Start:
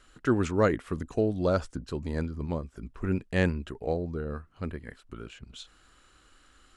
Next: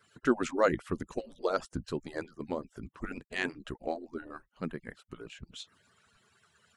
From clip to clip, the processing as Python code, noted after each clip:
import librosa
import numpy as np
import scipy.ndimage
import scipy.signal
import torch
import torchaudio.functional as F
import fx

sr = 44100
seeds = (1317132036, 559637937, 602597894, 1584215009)

y = fx.hpss_only(x, sr, part='percussive')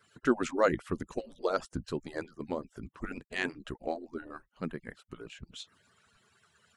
y = x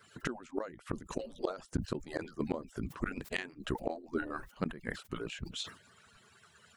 y = fx.gate_flip(x, sr, shuts_db=-25.0, range_db=-26)
y = fx.sustainer(y, sr, db_per_s=140.0)
y = F.gain(torch.from_numpy(y), 5.0).numpy()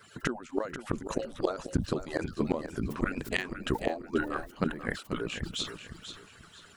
y = fx.echo_feedback(x, sr, ms=488, feedback_pct=31, wet_db=-10.0)
y = F.gain(torch.from_numpy(y), 5.5).numpy()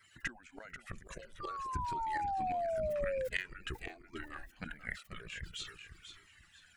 y = fx.graphic_eq(x, sr, hz=(125, 250, 500, 1000, 2000, 4000), db=(-3, -8, -8, -9, 9, -3))
y = fx.spec_paint(y, sr, seeds[0], shape='fall', start_s=1.4, length_s=1.88, low_hz=510.0, high_hz=1200.0, level_db=-30.0)
y = fx.comb_cascade(y, sr, direction='falling', hz=0.48)
y = F.gain(torch.from_numpy(y), -4.0).numpy()